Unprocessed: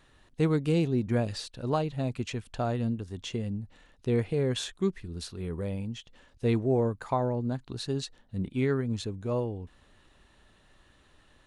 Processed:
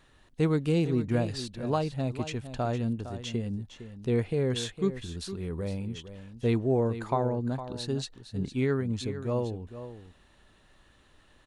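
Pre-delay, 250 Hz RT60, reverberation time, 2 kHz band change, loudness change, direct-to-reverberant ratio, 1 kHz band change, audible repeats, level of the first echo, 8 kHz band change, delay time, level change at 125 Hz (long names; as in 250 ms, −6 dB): no reverb audible, no reverb audible, no reverb audible, +0.5 dB, 0.0 dB, no reverb audible, +0.5 dB, 1, −12.0 dB, +0.5 dB, 459 ms, +0.5 dB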